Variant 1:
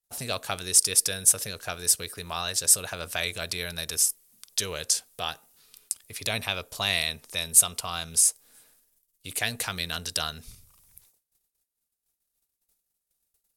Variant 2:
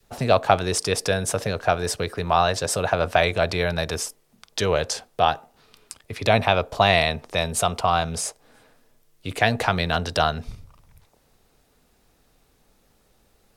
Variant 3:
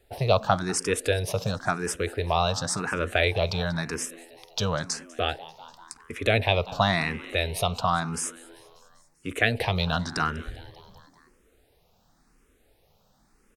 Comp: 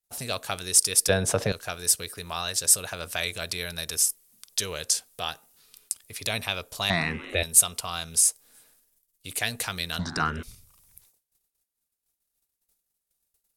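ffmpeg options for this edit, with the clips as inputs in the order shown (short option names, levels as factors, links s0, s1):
-filter_complex "[2:a]asplit=2[s0][s1];[0:a]asplit=4[s2][s3][s4][s5];[s2]atrim=end=1.092[s6];[1:a]atrim=start=1.088:end=1.522[s7];[s3]atrim=start=1.518:end=6.902[s8];[s0]atrim=start=6.898:end=7.432[s9];[s4]atrim=start=7.428:end=9.992[s10];[s1]atrim=start=9.988:end=10.432[s11];[s5]atrim=start=10.428[s12];[s6][s7]acrossfade=d=0.004:c1=hsin:c2=hsin[s13];[s13][s8]acrossfade=d=0.004:c1=hsin:c2=hsin[s14];[s14][s9]acrossfade=d=0.004:c1=hsin:c2=hsin[s15];[s15][s10]acrossfade=d=0.004:c1=hsin:c2=hsin[s16];[s16][s11]acrossfade=d=0.004:c1=hsin:c2=hsin[s17];[s17][s12]acrossfade=d=0.004:c1=hsin:c2=hsin"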